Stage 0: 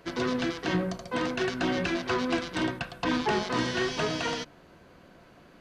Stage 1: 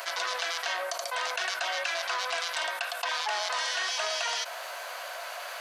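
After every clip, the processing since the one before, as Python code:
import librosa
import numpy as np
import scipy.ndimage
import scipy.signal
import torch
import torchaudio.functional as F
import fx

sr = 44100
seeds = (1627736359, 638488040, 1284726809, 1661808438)

y = scipy.signal.sosfilt(scipy.signal.ellip(4, 1.0, 70, 620.0, 'highpass', fs=sr, output='sos'), x)
y = fx.high_shelf(y, sr, hz=5400.0, db=12.0)
y = fx.env_flatten(y, sr, amount_pct=70)
y = y * librosa.db_to_amplitude(-3.0)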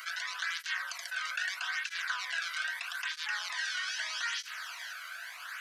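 y = fx.ladder_highpass(x, sr, hz=1300.0, resonance_pct=45)
y = y + 10.0 ** (-9.5 / 20.0) * np.pad(y, (int(485 * sr / 1000.0), 0))[:len(y)]
y = fx.flanger_cancel(y, sr, hz=0.79, depth_ms=1.2)
y = y * librosa.db_to_amplitude(4.5)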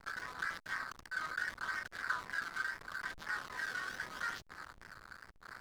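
y = fx.bass_treble(x, sr, bass_db=-2, treble_db=-9)
y = fx.fixed_phaser(y, sr, hz=700.0, stages=6)
y = fx.backlash(y, sr, play_db=-37.0)
y = y * librosa.db_to_amplitude(2.0)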